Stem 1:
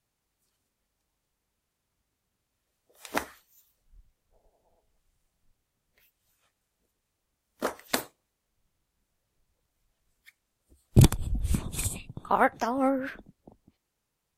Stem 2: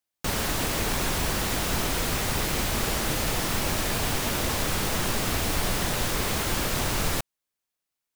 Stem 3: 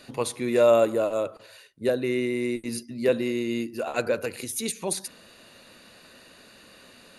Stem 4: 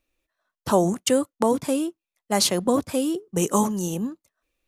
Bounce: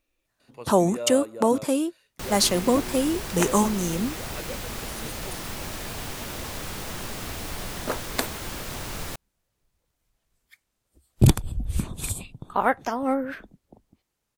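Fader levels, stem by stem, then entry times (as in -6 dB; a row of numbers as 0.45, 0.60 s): +1.0, -7.5, -13.5, 0.0 dB; 0.25, 1.95, 0.40, 0.00 s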